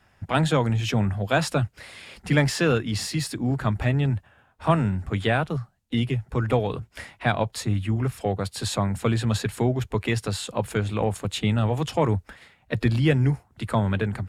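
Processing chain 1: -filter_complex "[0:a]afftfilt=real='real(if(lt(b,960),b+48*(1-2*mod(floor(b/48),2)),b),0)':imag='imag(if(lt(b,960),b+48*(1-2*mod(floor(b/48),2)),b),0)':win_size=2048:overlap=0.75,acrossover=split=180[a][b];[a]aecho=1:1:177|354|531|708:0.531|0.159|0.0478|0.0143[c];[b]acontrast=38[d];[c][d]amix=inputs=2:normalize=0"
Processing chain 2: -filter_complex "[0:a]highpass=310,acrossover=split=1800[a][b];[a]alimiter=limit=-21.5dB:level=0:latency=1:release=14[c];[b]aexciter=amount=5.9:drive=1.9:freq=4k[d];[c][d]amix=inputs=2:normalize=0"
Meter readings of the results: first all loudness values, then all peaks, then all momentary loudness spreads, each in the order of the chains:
-18.5, -25.5 LUFS; -4.0, -6.5 dBFS; 7, 15 LU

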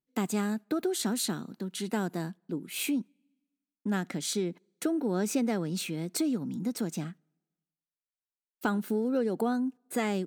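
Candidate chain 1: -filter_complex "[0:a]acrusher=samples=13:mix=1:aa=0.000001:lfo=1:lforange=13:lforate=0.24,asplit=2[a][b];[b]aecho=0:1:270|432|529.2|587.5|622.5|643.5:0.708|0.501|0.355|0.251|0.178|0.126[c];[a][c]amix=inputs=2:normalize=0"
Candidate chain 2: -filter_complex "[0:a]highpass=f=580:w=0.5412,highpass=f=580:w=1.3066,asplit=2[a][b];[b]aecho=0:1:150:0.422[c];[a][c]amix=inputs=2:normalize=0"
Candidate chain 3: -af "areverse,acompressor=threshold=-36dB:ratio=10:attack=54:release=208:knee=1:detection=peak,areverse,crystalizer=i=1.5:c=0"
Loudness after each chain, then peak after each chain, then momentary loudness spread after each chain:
-29.5, -37.0, -35.5 LUFS; -12.5, -18.5, -18.5 dBFS; 7, 10, 8 LU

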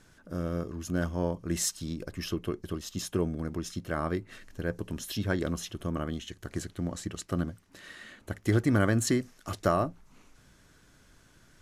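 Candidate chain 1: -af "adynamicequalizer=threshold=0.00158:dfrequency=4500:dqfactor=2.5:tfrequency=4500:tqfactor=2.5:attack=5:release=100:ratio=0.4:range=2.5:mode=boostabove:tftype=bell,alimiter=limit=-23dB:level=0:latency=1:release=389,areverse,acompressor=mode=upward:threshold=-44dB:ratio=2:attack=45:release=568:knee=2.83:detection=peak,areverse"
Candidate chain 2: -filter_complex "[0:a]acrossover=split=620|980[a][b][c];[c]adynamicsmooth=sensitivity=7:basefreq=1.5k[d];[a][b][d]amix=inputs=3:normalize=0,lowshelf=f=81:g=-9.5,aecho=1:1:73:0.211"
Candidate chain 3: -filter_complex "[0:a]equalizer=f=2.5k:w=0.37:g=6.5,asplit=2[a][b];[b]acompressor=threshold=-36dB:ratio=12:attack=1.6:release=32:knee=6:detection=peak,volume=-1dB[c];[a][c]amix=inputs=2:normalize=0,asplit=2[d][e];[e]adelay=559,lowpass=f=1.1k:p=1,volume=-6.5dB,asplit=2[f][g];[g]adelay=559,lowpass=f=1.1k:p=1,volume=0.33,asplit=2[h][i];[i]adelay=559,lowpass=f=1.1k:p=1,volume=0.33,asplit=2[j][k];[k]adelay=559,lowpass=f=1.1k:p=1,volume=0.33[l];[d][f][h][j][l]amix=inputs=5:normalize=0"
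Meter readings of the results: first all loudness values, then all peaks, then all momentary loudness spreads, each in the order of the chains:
-36.5, -33.5, -28.0 LUFS; -23.0, -13.0, -6.0 dBFS; 20, 13, 11 LU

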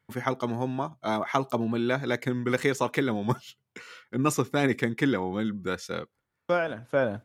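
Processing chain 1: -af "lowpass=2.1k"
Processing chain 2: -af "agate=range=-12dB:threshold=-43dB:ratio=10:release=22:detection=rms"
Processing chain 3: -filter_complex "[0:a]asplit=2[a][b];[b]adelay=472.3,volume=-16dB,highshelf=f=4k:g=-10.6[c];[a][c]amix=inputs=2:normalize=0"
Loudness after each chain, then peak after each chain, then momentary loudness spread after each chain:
-29.0, -28.5, -28.5 LUFS; -9.5, -9.0, -9.0 dBFS; 9, 8, 10 LU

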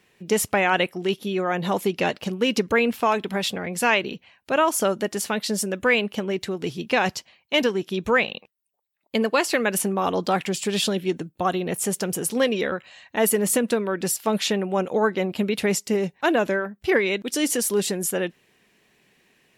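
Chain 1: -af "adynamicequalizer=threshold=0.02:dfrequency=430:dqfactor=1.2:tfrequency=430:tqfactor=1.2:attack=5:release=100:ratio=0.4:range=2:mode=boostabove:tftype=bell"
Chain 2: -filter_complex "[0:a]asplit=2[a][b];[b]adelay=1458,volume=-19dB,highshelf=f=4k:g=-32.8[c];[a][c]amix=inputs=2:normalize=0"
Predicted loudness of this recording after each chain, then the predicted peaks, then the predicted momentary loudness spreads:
-21.5, -23.5 LUFS; -6.5, -8.5 dBFS; 6, 7 LU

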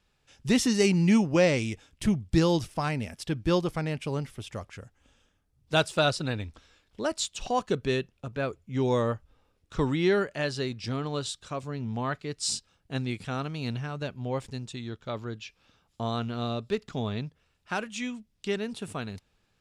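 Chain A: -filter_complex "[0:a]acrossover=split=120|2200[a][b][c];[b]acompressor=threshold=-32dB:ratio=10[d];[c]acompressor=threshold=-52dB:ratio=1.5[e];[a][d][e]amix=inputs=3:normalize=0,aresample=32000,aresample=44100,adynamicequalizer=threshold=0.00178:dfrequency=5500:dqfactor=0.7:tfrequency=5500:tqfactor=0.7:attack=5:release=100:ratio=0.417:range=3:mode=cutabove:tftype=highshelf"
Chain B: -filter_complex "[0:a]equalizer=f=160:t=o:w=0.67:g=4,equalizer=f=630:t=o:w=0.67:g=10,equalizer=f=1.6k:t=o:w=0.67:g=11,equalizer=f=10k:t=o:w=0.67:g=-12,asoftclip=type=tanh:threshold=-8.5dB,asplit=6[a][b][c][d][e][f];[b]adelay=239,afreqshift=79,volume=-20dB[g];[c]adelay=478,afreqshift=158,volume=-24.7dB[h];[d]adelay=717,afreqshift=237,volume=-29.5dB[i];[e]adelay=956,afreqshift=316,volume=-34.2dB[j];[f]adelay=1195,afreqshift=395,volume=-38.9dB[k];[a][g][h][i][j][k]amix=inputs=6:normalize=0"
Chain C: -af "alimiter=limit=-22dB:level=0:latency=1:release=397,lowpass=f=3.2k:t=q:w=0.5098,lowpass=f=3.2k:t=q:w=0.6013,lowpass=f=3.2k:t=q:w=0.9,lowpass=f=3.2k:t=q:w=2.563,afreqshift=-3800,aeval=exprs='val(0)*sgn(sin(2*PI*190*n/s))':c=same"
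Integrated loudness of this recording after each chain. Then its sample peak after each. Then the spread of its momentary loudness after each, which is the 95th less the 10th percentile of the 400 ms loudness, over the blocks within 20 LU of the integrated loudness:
-36.5, -25.5, -31.0 LUFS; -14.5, -9.0, -18.0 dBFS; 8, 15, 9 LU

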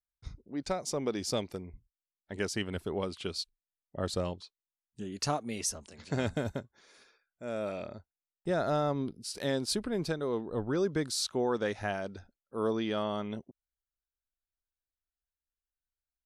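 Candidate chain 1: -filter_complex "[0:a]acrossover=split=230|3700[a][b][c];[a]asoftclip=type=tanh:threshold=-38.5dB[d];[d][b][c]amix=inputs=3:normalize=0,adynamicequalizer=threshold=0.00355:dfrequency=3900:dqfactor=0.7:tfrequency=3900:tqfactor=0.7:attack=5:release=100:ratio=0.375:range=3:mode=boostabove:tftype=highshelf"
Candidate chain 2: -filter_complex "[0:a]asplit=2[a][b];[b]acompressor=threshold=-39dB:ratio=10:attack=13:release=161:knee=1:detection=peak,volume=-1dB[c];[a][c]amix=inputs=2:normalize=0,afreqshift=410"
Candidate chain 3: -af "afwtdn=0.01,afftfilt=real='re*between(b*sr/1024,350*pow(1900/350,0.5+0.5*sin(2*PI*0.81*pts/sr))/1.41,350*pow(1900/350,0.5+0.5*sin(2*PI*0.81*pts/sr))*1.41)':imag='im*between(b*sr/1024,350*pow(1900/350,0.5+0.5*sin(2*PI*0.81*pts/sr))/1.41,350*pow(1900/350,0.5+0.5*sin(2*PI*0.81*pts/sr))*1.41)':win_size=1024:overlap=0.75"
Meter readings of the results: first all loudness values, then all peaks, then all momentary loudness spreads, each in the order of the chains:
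-33.5, -31.5, -40.5 LUFS; -13.0, -14.5, -22.5 dBFS; 15, 12, 21 LU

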